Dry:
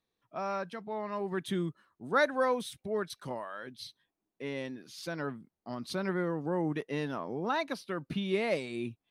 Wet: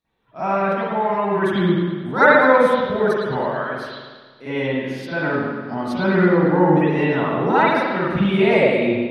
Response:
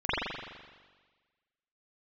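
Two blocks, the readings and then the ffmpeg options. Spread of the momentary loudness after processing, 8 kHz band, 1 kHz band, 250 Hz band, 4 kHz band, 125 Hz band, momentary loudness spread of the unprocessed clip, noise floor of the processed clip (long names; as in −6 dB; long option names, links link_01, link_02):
12 LU, can't be measured, +17.0 dB, +16.5 dB, +10.0 dB, +16.5 dB, 12 LU, −47 dBFS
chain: -filter_complex "[1:a]atrim=start_sample=2205,asetrate=41013,aresample=44100[link_01];[0:a][link_01]afir=irnorm=-1:irlink=0,volume=2dB"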